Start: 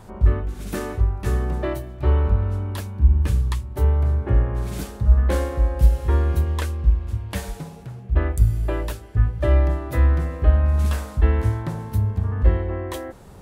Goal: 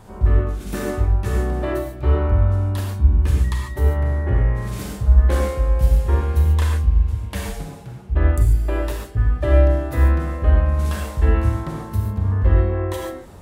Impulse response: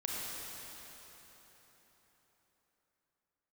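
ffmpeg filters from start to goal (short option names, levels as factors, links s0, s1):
-filter_complex "[0:a]asettb=1/sr,asplit=3[s0][s1][s2];[s0]atrim=end=3.444[s3];[s1]atrim=start=3.44:end=4.68,asetpts=PTS-STARTPTS,afade=t=in:d=0.004:c=qsin,afade=t=out:st=1.236:d=0.004:c=qsin,aeval=exprs='val(0)+0.0112*sin(2*PI*1900*n/s)':c=same[s4];[s2]atrim=start=4.676[s5];[s3][s4]acrossfade=d=0.004:c1=hsin:c2=qsin[s6];[s6][s5]acrossfade=d=0.004:c1=qsin:c2=hsin,bandreject=f=166.9:t=h:w=4,bandreject=f=333.8:t=h:w=4,bandreject=f=500.7:t=h:w=4,bandreject=f=667.6:t=h:w=4,bandreject=f=834.5:t=h:w=4,bandreject=f=1001.4:t=h:w=4,bandreject=f=1168.3:t=h:w=4,bandreject=f=1335.2:t=h:w=4,bandreject=f=1502.1:t=h:w=4,bandreject=f=1669:t=h:w=4,bandreject=f=1835.9:t=h:w=4,bandreject=f=2002.8:t=h:w=4,bandreject=f=2169.7:t=h:w=4,bandreject=f=2336.6:t=h:w=4,bandreject=f=2503.5:t=h:w=4,bandreject=f=2670.4:t=h:w=4,bandreject=f=2837.3:t=h:w=4,bandreject=f=3004.2:t=h:w=4,bandreject=f=3171.1:t=h:w=4,bandreject=f=3338:t=h:w=4,bandreject=f=3504.9:t=h:w=4,bandreject=f=3671.8:t=h:w=4,bandreject=f=3838.7:t=h:w=4,bandreject=f=4005.6:t=h:w=4,bandreject=f=4172.5:t=h:w=4,bandreject=f=4339.4:t=h:w=4,bandreject=f=4506.3:t=h:w=4,bandreject=f=4673.2:t=h:w=4,bandreject=f=4840.1:t=h:w=4,bandreject=f=5007:t=h:w=4,bandreject=f=5173.9:t=h:w=4,bandreject=f=5340.8:t=h:w=4,bandreject=f=5507.7:t=h:w=4,bandreject=f=5674.6:t=h:w=4[s7];[1:a]atrim=start_sample=2205,atrim=end_sample=6615[s8];[s7][s8]afir=irnorm=-1:irlink=0,volume=1.19"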